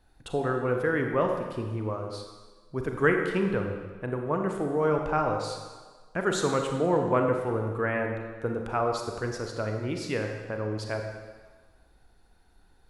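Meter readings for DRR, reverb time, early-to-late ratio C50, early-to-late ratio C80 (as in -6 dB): 3.0 dB, 1.5 s, 4.0 dB, 5.5 dB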